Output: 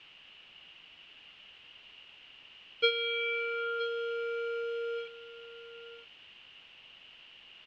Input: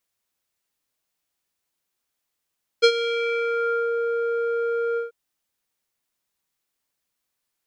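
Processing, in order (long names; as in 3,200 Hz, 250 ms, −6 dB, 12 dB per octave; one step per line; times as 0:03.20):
centre clipping without the shift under −32 dBFS
background noise white −46 dBFS
transistor ladder low-pass 3,000 Hz, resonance 85%
single-tap delay 970 ms −14 dB
level +1 dB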